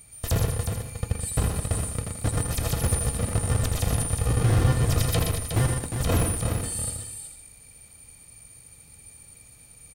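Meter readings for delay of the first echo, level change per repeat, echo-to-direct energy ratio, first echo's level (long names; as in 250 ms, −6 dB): 81 ms, repeats not evenly spaced, −1.5 dB, −7.0 dB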